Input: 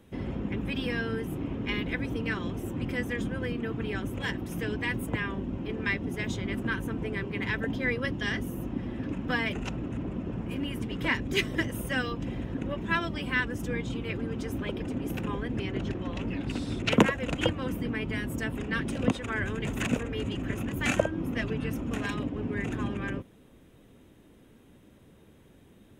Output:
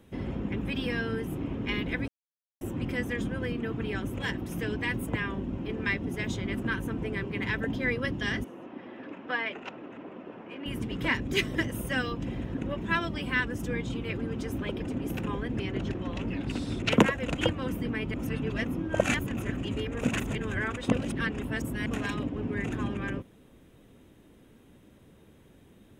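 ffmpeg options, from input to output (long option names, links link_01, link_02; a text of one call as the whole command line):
ffmpeg -i in.wav -filter_complex "[0:a]asettb=1/sr,asplit=3[link_01][link_02][link_03];[link_01]atrim=end=8.444[link_04];[link_02]atrim=start=8.44:end=10.66,asetpts=PTS-STARTPTS,afade=type=in:duration=0.004:curve=qsin,afade=type=out:start_time=2.216:duration=0.004:curve=qsin,highpass=440,lowpass=3000[link_05];[link_03]atrim=start=10.656[link_06];[link_04][link_05]acrossfade=duration=0.004:curve1=hsin:curve2=qsin[link_07];[link_07][link_06]acrossfade=duration=0.004:curve1=qsin:curve2=hsin,asplit=5[link_08][link_09][link_10][link_11][link_12];[link_08]atrim=end=2.08,asetpts=PTS-STARTPTS,afade=type=out:start_time=2.076:duration=0.004:curve=hsin[link_13];[link_09]atrim=start=2.08:end=2.61,asetpts=PTS-STARTPTS,volume=0[link_14];[link_10]atrim=start=2.61:end=18.142,asetpts=PTS-STARTPTS,afade=type=in:duration=0.004:curve=hsin[link_15];[link_11]atrim=start=18.138:end=21.862,asetpts=PTS-STARTPTS,areverse[link_16];[link_12]atrim=start=21.858[link_17];[link_13][link_14][link_15]concat=n=3:v=0:a=1[link_18];[link_18][link_16]acrossfade=duration=0.004:curve1=hsin:curve2=hsin[link_19];[link_19][link_17]acrossfade=duration=0.004:curve1=hsin:curve2=hsin" out.wav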